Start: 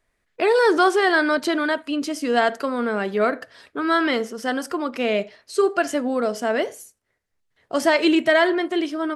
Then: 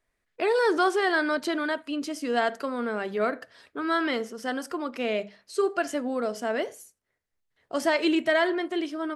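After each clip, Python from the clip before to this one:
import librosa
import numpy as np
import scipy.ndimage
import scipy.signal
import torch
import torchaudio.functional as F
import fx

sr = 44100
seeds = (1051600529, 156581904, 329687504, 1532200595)

y = fx.hum_notches(x, sr, base_hz=50, count=4)
y = y * 10.0 ** (-6.0 / 20.0)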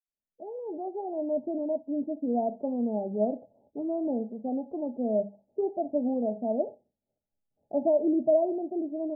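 y = fx.fade_in_head(x, sr, length_s=1.92)
y = scipy.signal.sosfilt(scipy.signal.cheby1(6, 9, 860.0, 'lowpass', fs=sr, output='sos'), y)
y = y * 10.0 ** (4.5 / 20.0)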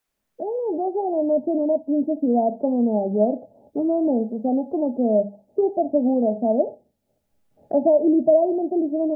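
y = fx.band_squash(x, sr, depth_pct=40)
y = y * 10.0 ** (8.5 / 20.0)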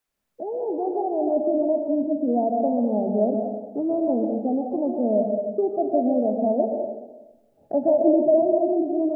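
y = fx.rev_plate(x, sr, seeds[0], rt60_s=1.1, hf_ratio=0.9, predelay_ms=110, drr_db=2.0)
y = y * 10.0 ** (-3.0 / 20.0)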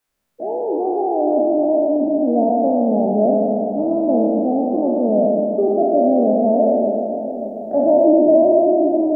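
y = fx.spec_trails(x, sr, decay_s=2.43)
y = fx.echo_feedback(y, sr, ms=585, feedback_pct=59, wet_db=-12)
y = y * 10.0 ** (2.5 / 20.0)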